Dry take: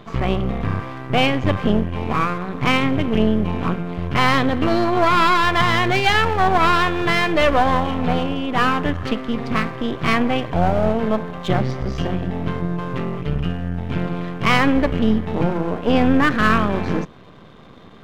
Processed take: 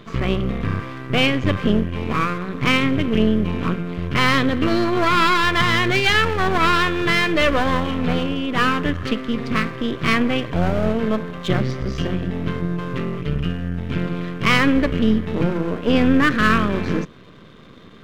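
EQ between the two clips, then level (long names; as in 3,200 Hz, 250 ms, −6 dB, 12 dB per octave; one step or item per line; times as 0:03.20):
low-shelf EQ 170 Hz −3.5 dB
parametric band 790 Hz −10.5 dB 0.72 octaves
+2.0 dB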